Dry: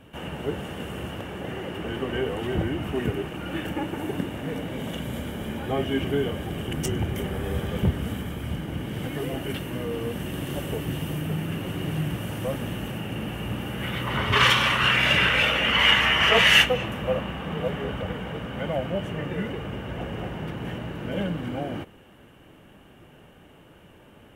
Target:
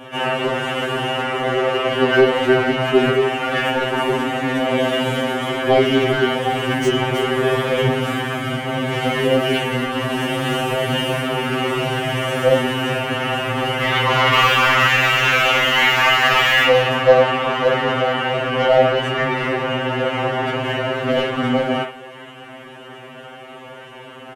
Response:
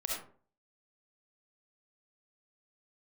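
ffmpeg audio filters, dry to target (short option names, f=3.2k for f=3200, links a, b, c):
-filter_complex "[0:a]asplit=2[a][b];[b]highpass=f=720:p=1,volume=28dB,asoftclip=type=tanh:threshold=-3.5dB[c];[a][c]amix=inputs=2:normalize=0,lowpass=f=1.4k:p=1,volume=-6dB,lowpass=8.4k,aemphasis=mode=production:type=50kf,acrossover=split=230|3200[d][e][f];[e]aecho=1:1:40|57:0.473|0.596[g];[f]volume=28.5dB,asoftclip=hard,volume=-28.5dB[h];[d][g][h]amix=inputs=3:normalize=0,afftfilt=real='re*2.45*eq(mod(b,6),0)':imag='im*2.45*eq(mod(b,6),0)':win_size=2048:overlap=0.75"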